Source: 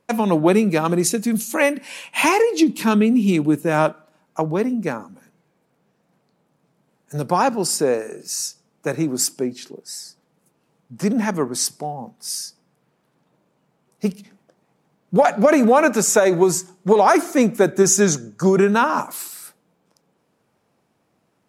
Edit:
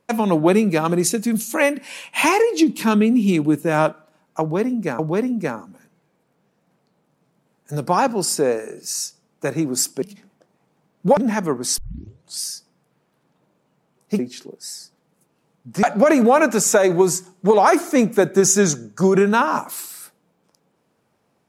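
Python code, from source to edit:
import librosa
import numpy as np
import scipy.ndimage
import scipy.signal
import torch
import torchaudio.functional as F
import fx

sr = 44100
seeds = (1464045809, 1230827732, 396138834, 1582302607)

y = fx.edit(x, sr, fx.repeat(start_s=4.41, length_s=0.58, count=2),
    fx.swap(start_s=9.44, length_s=1.64, other_s=14.1, other_length_s=1.15),
    fx.tape_start(start_s=11.69, length_s=0.64), tone=tone)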